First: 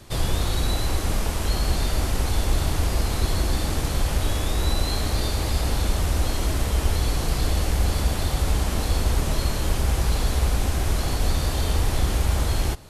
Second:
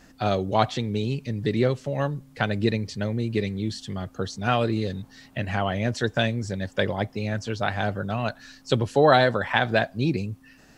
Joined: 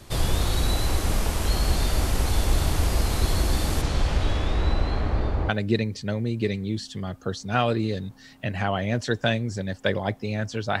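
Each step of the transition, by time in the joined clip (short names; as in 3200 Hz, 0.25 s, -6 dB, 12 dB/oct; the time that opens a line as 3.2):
first
3.81–5.49 LPF 6700 Hz -> 1200 Hz
5.49 switch to second from 2.42 s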